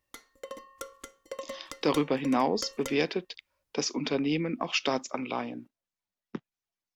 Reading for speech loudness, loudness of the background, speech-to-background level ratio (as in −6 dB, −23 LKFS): −30.0 LKFS, −43.5 LKFS, 13.5 dB